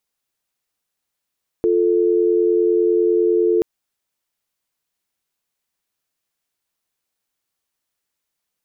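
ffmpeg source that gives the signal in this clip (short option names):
-f lavfi -i "aevalsrc='0.158*(sin(2*PI*350*t)+sin(2*PI*440*t))':d=1.98:s=44100"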